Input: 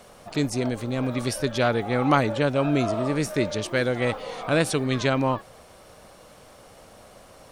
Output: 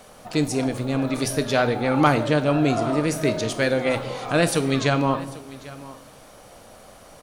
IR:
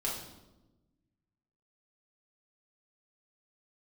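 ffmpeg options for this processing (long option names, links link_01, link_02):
-filter_complex "[0:a]aecho=1:1:827:0.112,asplit=2[link_01][link_02];[1:a]atrim=start_sample=2205,highshelf=frequency=5500:gain=8[link_03];[link_02][link_03]afir=irnorm=-1:irlink=0,volume=-12dB[link_04];[link_01][link_04]amix=inputs=2:normalize=0,asetrate=45864,aresample=44100"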